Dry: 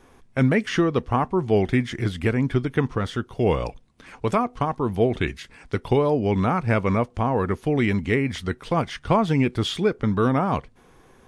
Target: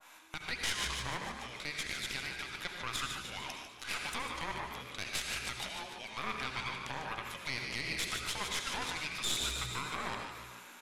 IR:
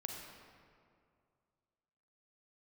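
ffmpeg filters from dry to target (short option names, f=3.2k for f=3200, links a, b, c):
-filter_complex "[0:a]acompressor=threshold=-32dB:ratio=20,afreqshift=-280,bandreject=f=1.5k:w=12,asetrate=45938,aresample=44100,highpass=1.1k,aeval=exprs='0.0531*(cos(1*acos(clip(val(0)/0.0531,-1,1)))-cos(1*PI/2))+0.0188*(cos(4*acos(clip(val(0)/0.0531,-1,1)))-cos(4*PI/2))+0.00473*(cos(8*acos(clip(val(0)/0.0531,-1,1)))-cos(8*PI/2))':c=same,asetrate=49501,aresample=44100,atempo=0.890899,asplit=8[a][b][c][d][e][f][g][h];[b]adelay=148,afreqshift=60,volume=-10dB[i];[c]adelay=296,afreqshift=120,volume=-14.4dB[j];[d]adelay=444,afreqshift=180,volume=-18.9dB[k];[e]adelay=592,afreqshift=240,volume=-23.3dB[l];[f]adelay=740,afreqshift=300,volume=-27.7dB[m];[g]adelay=888,afreqshift=360,volume=-32.2dB[n];[h]adelay=1036,afreqshift=420,volume=-36.6dB[o];[a][i][j][k][l][m][n][o]amix=inputs=8:normalize=0,alimiter=level_in=6.5dB:limit=-24dB:level=0:latency=1:release=78,volume=-6.5dB[p];[1:a]atrim=start_sample=2205,atrim=end_sample=4410,asetrate=24696,aresample=44100[q];[p][q]afir=irnorm=-1:irlink=0,adynamicequalizer=threshold=0.00178:dfrequency=1500:dqfactor=0.7:tfrequency=1500:tqfactor=0.7:attack=5:release=100:ratio=0.375:range=2:mode=boostabove:tftype=highshelf,volume=6.5dB"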